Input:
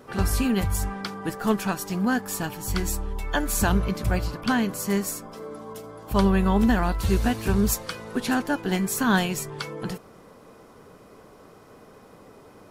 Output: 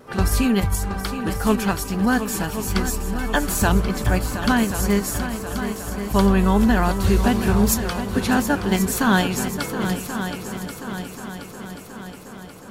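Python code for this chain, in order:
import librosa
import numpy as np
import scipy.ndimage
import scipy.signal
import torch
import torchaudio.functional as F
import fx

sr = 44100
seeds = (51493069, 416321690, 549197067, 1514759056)

p1 = fx.level_steps(x, sr, step_db=12)
p2 = x + F.gain(torch.from_numpy(p1), -1.5).numpy()
p3 = fx.vibrato(p2, sr, rate_hz=3.7, depth_cents=30.0)
y = fx.echo_heads(p3, sr, ms=361, heads='second and third', feedback_pct=58, wet_db=-10.5)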